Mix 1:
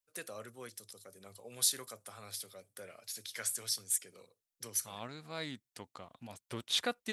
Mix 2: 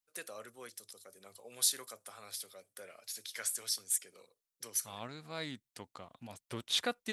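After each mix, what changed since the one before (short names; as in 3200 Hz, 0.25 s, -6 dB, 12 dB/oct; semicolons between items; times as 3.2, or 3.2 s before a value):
first voice: add HPF 350 Hz 6 dB/oct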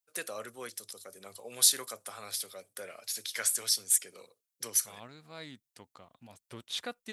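first voice +7.0 dB; second voice -4.5 dB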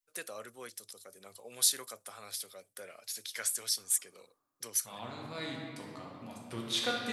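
first voice -4.0 dB; reverb: on, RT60 2.3 s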